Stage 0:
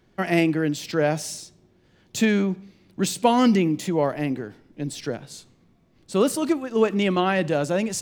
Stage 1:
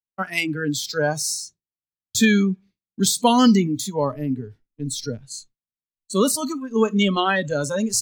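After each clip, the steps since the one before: spectral noise reduction 21 dB; expander -45 dBFS; bell 510 Hz -9 dB 2.4 oct; gain +8.5 dB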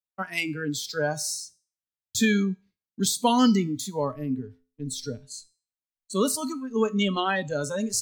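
resonator 86 Hz, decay 0.39 s, harmonics odd, mix 50%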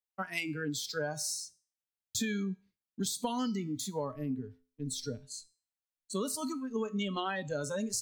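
compressor 12:1, threshold -26 dBFS, peak gain reduction 11 dB; gain -4 dB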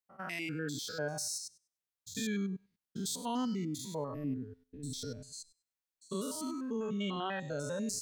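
stepped spectrum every 0.1 s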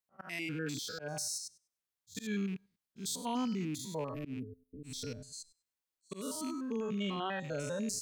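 rattling part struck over -41 dBFS, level -41 dBFS; spectral gain 4.4–4.83, 680–9200 Hz -25 dB; auto swell 0.13 s

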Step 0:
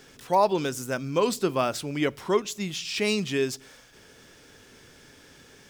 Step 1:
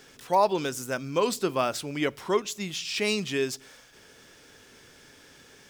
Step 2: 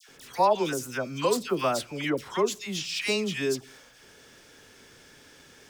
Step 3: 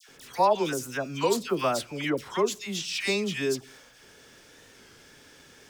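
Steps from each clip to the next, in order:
low shelf 320 Hz -4.5 dB
dispersion lows, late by 89 ms, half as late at 1400 Hz
record warp 33 1/3 rpm, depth 100 cents

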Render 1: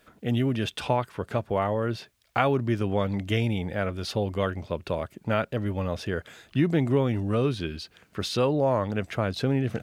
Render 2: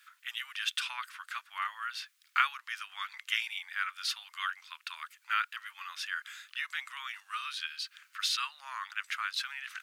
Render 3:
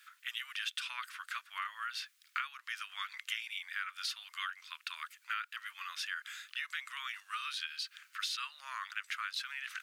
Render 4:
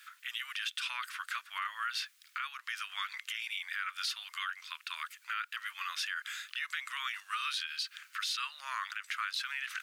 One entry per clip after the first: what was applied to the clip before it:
steep high-pass 1200 Hz 48 dB/oct; gain +2 dB
bell 820 Hz -9.5 dB 0.49 oct; compressor 5:1, threshold -36 dBFS, peak gain reduction 13 dB; gain +1 dB
limiter -30 dBFS, peak gain reduction 10.5 dB; gain +5 dB

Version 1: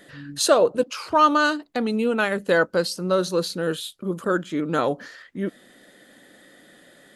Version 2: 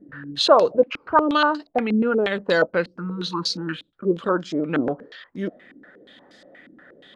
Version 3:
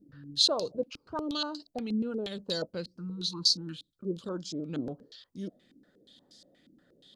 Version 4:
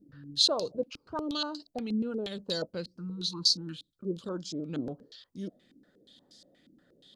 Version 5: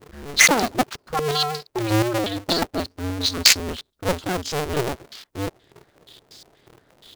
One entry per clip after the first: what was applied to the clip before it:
spectral repair 3.01–3.73, 360–830 Hz after; stepped low-pass 8.4 Hz 290–5200 Hz; gain -1 dB
EQ curve 110 Hz 0 dB, 2000 Hz -20 dB, 4500 Hz +7 dB; gain -5 dB
nothing audible
cycle switcher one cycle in 2, inverted; in parallel at -6 dB: companded quantiser 4-bit; on the sum: gain +7 dB

